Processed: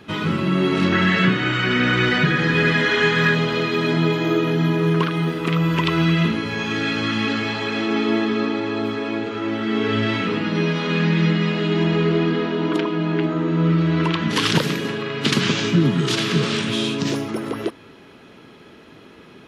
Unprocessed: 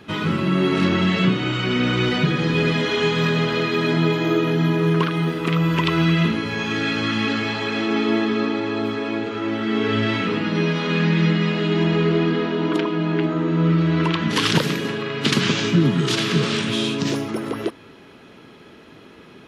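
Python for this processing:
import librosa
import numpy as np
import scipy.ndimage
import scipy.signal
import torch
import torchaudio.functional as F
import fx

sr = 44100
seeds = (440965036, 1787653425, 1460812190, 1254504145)

y = fx.peak_eq(x, sr, hz=1700.0, db=11.0, octaves=0.64, at=(0.92, 3.35))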